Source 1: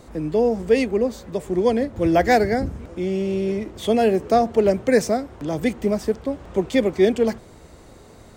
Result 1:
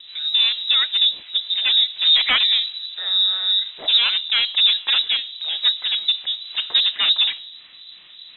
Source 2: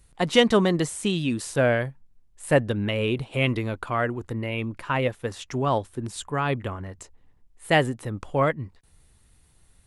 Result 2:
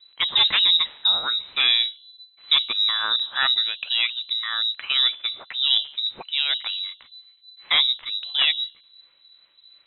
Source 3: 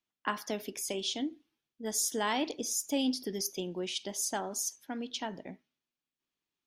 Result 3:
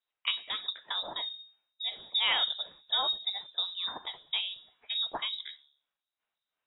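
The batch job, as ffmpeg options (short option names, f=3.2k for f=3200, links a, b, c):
-filter_complex "[0:a]aeval=exprs='0.188*(abs(mod(val(0)/0.188+3,4)-2)-1)':c=same,bandreject=f=71.76:t=h:w=4,bandreject=f=143.52:t=h:w=4,bandreject=f=215.28:t=h:w=4,bandreject=f=287.04:t=h:w=4,bandreject=f=358.8:t=h:w=4,bandreject=f=430.56:t=h:w=4,bandreject=f=502.32:t=h:w=4,bandreject=f=574.08:t=h:w=4,bandreject=f=645.84:t=h:w=4,bandreject=f=717.6:t=h:w=4,bandreject=f=789.36:t=h:w=4,bandreject=f=861.12:t=h:w=4,bandreject=f=932.88:t=h:w=4,bandreject=f=1.00464k:t=h:w=4,bandreject=f=1.0764k:t=h:w=4,bandreject=f=1.14816k:t=h:w=4,bandreject=f=1.21992k:t=h:w=4,acrossover=split=730[a][b];[a]aeval=exprs='val(0)*(1-0.7/2+0.7/2*cos(2*PI*2.8*n/s))':c=same[c];[b]aeval=exprs='val(0)*(1-0.7/2-0.7/2*cos(2*PI*2.8*n/s))':c=same[d];[c][d]amix=inputs=2:normalize=0,lowpass=f=3.4k:t=q:w=0.5098,lowpass=f=3.4k:t=q:w=0.6013,lowpass=f=3.4k:t=q:w=0.9,lowpass=f=3.4k:t=q:w=2.563,afreqshift=-4000,volume=6.5dB"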